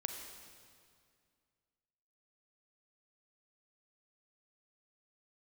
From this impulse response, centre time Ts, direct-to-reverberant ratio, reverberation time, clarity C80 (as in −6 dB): 50 ms, 4.5 dB, 2.2 s, 6.0 dB